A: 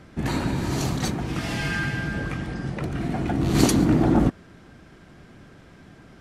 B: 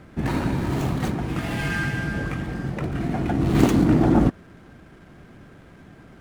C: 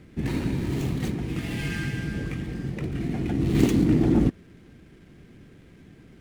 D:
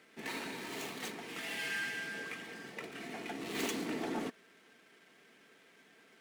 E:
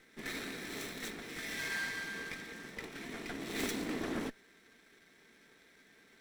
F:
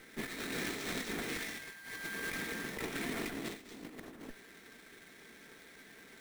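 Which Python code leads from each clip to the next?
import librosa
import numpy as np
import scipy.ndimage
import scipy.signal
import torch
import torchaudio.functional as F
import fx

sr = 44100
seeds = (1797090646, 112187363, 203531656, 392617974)

y1 = scipy.ndimage.median_filter(x, 9, mode='constant')
y1 = F.gain(torch.from_numpy(y1), 1.5).numpy()
y2 = fx.band_shelf(y1, sr, hz=950.0, db=-9.0, octaves=1.7)
y2 = F.gain(torch.from_numpy(y2), -2.5).numpy()
y3 = scipy.signal.sosfilt(scipy.signal.butter(2, 680.0, 'highpass', fs=sr, output='sos'), y2)
y3 = y3 + 0.34 * np.pad(y3, (int(4.5 * sr / 1000.0), 0))[:len(y3)]
y3 = 10.0 ** (-25.5 / 20.0) * np.tanh(y3 / 10.0 ** (-25.5 / 20.0))
y3 = F.gain(torch.from_numpy(y3), -1.5).numpy()
y4 = fx.lower_of_two(y3, sr, delay_ms=0.52)
y4 = F.gain(torch.from_numpy(y4), 1.0).numpy()
y5 = fx.over_compress(y4, sr, threshold_db=-44.0, ratio=-0.5)
y5 = fx.sample_hold(y5, sr, seeds[0], rate_hz=12000.0, jitter_pct=20)
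y5 = F.gain(torch.from_numpy(y5), 3.5).numpy()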